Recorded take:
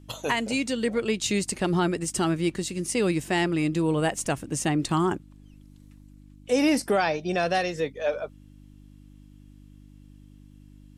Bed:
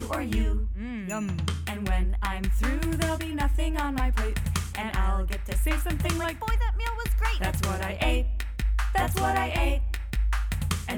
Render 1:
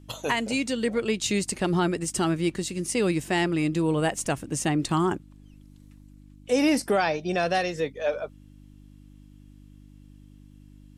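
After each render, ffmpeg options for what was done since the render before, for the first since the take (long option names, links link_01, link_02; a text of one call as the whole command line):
ffmpeg -i in.wav -af anull out.wav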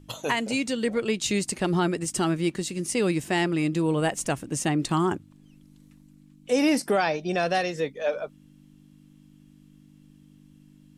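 ffmpeg -i in.wav -af "bandreject=frequency=50:width_type=h:width=4,bandreject=frequency=100:width_type=h:width=4" out.wav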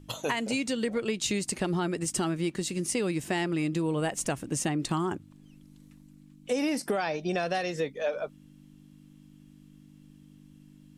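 ffmpeg -i in.wav -af "acompressor=threshold=-25dB:ratio=6" out.wav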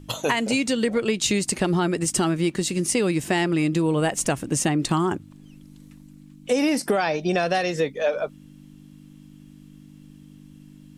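ffmpeg -i in.wav -af "volume=7dB" out.wav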